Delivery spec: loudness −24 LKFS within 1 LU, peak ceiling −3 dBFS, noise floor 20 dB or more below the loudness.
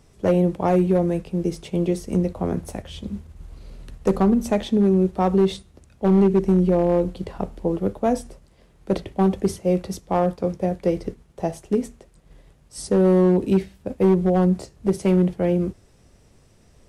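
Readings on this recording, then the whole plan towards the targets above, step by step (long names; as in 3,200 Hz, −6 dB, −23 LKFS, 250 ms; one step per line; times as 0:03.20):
share of clipped samples 1.2%; peaks flattened at −11.0 dBFS; integrated loudness −21.5 LKFS; sample peak −11.0 dBFS; target loudness −24.0 LKFS
→ clipped peaks rebuilt −11 dBFS
level −2.5 dB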